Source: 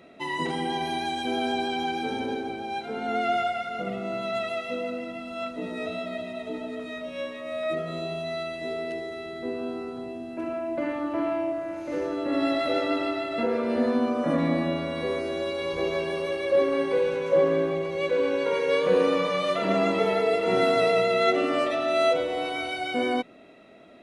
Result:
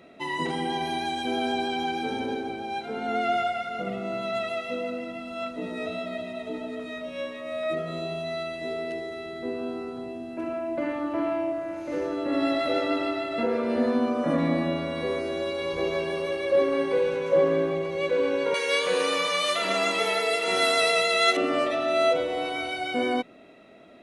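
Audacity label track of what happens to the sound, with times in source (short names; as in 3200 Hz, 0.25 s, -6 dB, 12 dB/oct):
18.540000	21.370000	tilt +4.5 dB/oct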